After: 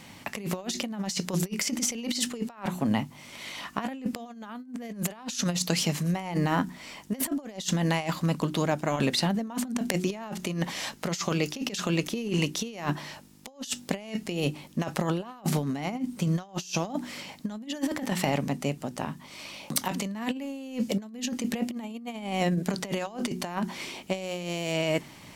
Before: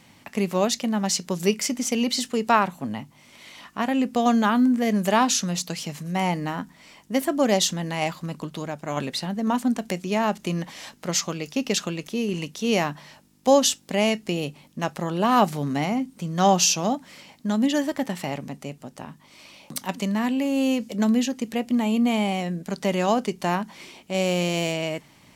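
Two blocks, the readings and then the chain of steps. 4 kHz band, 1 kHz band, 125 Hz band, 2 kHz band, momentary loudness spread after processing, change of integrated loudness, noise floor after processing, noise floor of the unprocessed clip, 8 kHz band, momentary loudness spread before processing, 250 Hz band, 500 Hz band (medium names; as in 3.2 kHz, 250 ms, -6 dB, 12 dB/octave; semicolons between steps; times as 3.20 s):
-4.5 dB, -9.5 dB, 0.0 dB, -4.5 dB, 10 LU, -6.0 dB, -49 dBFS, -54 dBFS, -6.0 dB, 13 LU, -6.0 dB, -7.5 dB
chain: de-hum 60.86 Hz, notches 6; compressor with a negative ratio -29 dBFS, ratio -0.5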